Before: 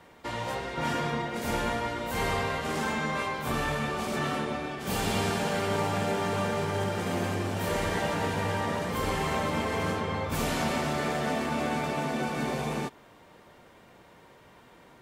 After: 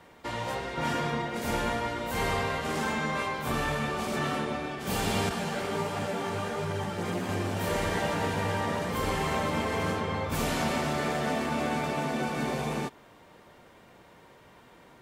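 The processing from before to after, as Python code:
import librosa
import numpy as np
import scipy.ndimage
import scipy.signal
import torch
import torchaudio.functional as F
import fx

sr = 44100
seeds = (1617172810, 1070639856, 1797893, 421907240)

y = fx.chorus_voices(x, sr, voices=2, hz=1.4, base_ms=15, depth_ms=3.0, mix_pct=55, at=(5.29, 7.29))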